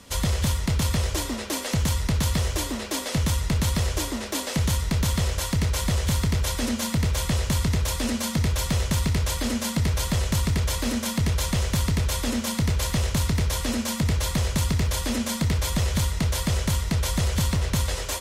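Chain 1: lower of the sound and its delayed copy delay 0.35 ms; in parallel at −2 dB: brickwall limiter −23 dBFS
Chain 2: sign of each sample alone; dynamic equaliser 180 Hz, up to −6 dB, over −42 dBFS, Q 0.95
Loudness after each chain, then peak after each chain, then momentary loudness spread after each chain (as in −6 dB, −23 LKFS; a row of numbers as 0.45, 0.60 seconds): −22.5, −25.0 LKFS; −12.5, −19.5 dBFS; 2, 3 LU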